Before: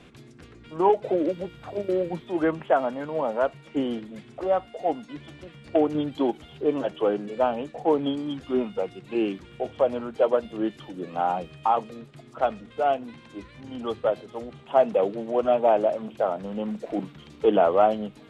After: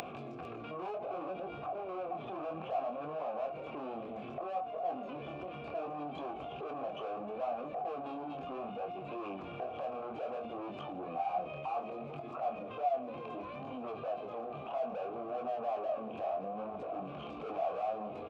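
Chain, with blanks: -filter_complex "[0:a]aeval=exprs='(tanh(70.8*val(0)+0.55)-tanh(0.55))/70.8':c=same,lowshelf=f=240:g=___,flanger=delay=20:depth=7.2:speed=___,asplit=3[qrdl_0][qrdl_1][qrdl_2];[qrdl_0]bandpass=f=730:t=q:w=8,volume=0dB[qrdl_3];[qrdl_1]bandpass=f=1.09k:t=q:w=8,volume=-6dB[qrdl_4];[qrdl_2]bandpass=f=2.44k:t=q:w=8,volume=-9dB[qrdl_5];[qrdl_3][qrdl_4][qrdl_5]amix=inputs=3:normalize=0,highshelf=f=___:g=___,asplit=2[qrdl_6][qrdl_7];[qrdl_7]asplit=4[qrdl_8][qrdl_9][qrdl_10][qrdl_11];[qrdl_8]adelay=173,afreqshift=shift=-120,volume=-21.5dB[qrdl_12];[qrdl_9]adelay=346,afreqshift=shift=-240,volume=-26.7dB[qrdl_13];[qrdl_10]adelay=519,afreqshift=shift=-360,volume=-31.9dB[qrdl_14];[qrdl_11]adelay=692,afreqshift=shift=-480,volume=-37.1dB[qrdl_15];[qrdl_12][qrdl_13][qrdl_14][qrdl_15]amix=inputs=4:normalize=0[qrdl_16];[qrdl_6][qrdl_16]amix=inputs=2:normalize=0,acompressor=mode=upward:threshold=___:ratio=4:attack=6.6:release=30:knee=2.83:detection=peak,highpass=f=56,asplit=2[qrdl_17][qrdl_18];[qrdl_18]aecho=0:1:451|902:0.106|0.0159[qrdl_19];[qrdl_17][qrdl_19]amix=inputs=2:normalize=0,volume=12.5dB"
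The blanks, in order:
9.5, 0.65, 2.3k, -9, -51dB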